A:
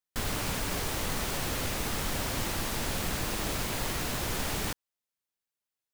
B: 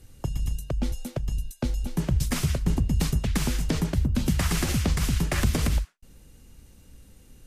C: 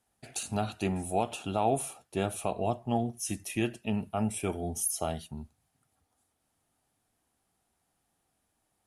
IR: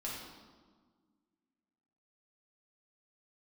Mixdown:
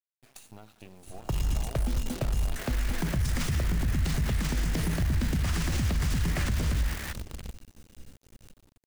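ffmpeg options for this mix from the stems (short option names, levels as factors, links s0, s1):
-filter_complex "[0:a]equalizer=f=1800:t=o:w=1.1:g=14,adelay=2400,volume=0.224[s0];[1:a]lowpass=8600,acrossover=split=140[s1][s2];[s2]acompressor=threshold=0.0158:ratio=2[s3];[s1][s3]amix=inputs=2:normalize=0,adelay=1050,volume=1.26,asplit=3[s4][s5][s6];[s5]volume=0.266[s7];[s6]volume=0.112[s8];[2:a]acompressor=threshold=0.0158:ratio=6,volume=0.376,asplit=3[s9][s10][s11];[s10]volume=0.251[s12];[s11]volume=0.398[s13];[3:a]atrim=start_sample=2205[s14];[s7][s12]amix=inputs=2:normalize=0[s15];[s15][s14]afir=irnorm=-1:irlink=0[s16];[s8][s13]amix=inputs=2:normalize=0,aecho=0:1:671:1[s17];[s0][s4][s9][s16][s17]amix=inputs=5:normalize=0,acrusher=bits=7:dc=4:mix=0:aa=0.000001,alimiter=limit=0.1:level=0:latency=1:release=29"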